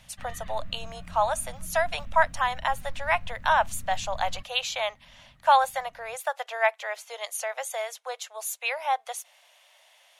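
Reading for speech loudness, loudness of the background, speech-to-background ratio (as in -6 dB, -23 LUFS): -28.0 LUFS, -46.5 LUFS, 18.5 dB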